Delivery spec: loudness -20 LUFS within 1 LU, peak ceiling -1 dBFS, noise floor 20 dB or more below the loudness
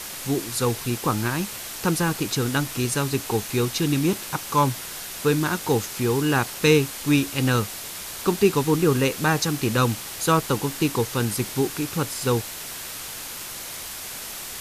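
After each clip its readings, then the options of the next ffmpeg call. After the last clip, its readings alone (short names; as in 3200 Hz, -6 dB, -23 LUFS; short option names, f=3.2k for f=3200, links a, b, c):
noise floor -35 dBFS; noise floor target -44 dBFS; loudness -24.0 LUFS; peak -5.0 dBFS; loudness target -20.0 LUFS
-> -af "afftdn=nr=9:nf=-35"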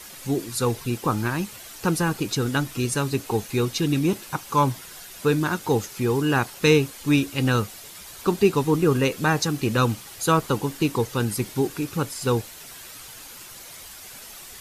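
noise floor -42 dBFS; noise floor target -44 dBFS
-> -af "afftdn=nr=6:nf=-42"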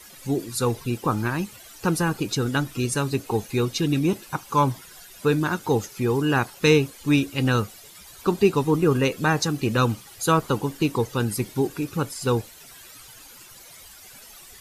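noise floor -46 dBFS; loudness -24.0 LUFS; peak -5.5 dBFS; loudness target -20.0 LUFS
-> -af "volume=4dB"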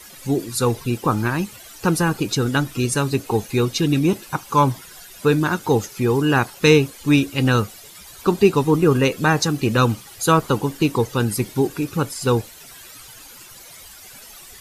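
loudness -20.0 LUFS; peak -1.5 dBFS; noise floor -42 dBFS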